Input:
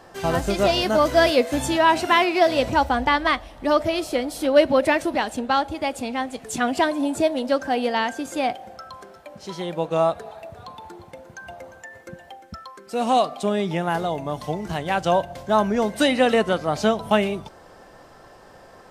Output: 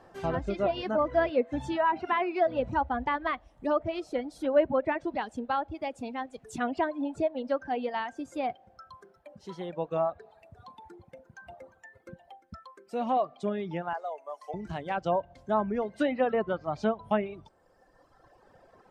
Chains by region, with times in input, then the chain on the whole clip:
13.93–14.54 s: high-pass 490 Hz 24 dB/octave + peaking EQ 3.6 kHz -9.5 dB 0.54 oct
whole clip: treble shelf 2.5 kHz -10 dB; low-pass that closes with the level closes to 2.2 kHz, closed at -16 dBFS; reverb removal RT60 1.8 s; trim -6.5 dB

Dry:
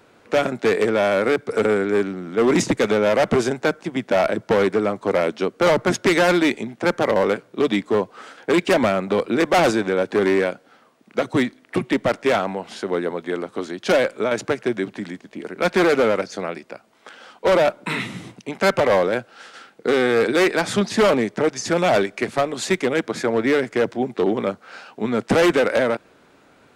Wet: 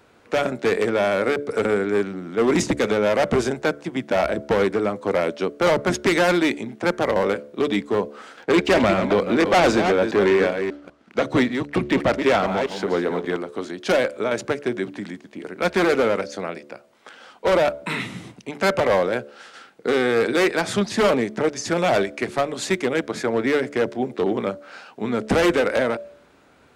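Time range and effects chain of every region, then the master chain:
8.35–13.37 s: chunks repeated in reverse 196 ms, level -8 dB + low-pass 6.9 kHz + waveshaping leveller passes 1
whole clip: peaking EQ 66 Hz +14.5 dB 0.31 oct; de-hum 72.27 Hz, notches 9; trim -1.5 dB

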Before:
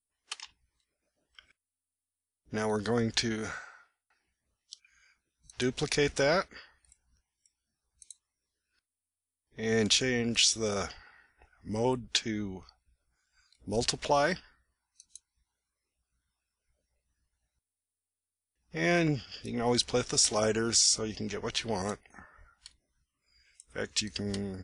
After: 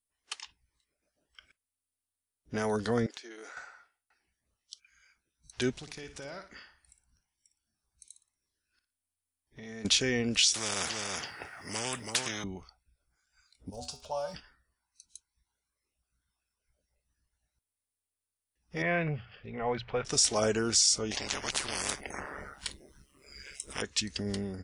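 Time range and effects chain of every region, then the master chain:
3.06–3.57 s: steep high-pass 310 Hz + compression, threshold -44 dBFS
5.71–9.85 s: peaking EQ 470 Hz -7 dB 0.27 oct + compression 4:1, threshold -44 dBFS + flutter echo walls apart 9.9 m, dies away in 0.34 s
10.54–12.44 s: high-pass 110 Hz 24 dB/octave + delay 330 ms -11.5 dB + spectrum-flattening compressor 4:1
13.69–14.33 s: feedback comb 82 Hz, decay 0.34 s, harmonics odd, mix 80% + crackle 70 per s -44 dBFS + static phaser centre 800 Hz, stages 4
18.82–20.05 s: low-pass 2.5 kHz 24 dB/octave + peaking EQ 290 Hz -15 dB 0.62 oct + hum notches 60/120/180 Hz
21.11–23.82 s: peaking EQ 400 Hz +15 dB 1 oct + AM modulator 140 Hz, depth 50% + spectrum-flattening compressor 10:1
whole clip: none

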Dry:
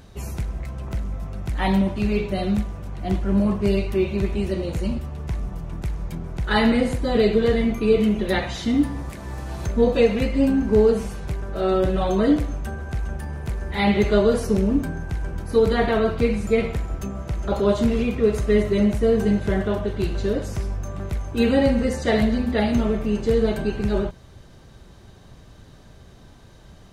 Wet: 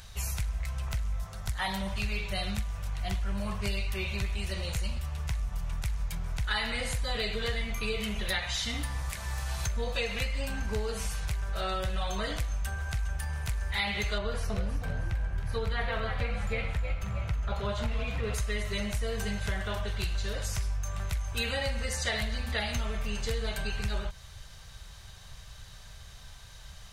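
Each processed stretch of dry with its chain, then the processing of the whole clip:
1.20–1.92 s: peaking EQ 2.5 kHz -8 dB 0.49 oct + hum notches 50/100/150/200/250/300/350 Hz
14.18–18.34 s: tone controls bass +3 dB, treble -12 dB + frequency-shifting echo 317 ms, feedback 34%, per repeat +57 Hz, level -8.5 dB
whole clip: amplifier tone stack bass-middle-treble 10-0-10; compression 4:1, threshold -36 dBFS; trim +7.5 dB

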